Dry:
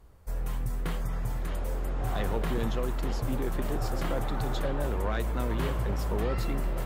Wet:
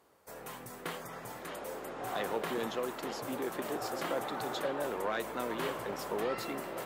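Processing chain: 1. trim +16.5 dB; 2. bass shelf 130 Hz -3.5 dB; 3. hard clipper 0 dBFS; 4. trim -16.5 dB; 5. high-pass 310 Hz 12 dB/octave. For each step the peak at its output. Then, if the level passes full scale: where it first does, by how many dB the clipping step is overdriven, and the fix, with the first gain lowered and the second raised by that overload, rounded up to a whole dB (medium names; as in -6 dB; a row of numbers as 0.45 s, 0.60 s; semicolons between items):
-4.0 dBFS, -4.0 dBFS, -4.0 dBFS, -20.5 dBFS, -21.5 dBFS; nothing clips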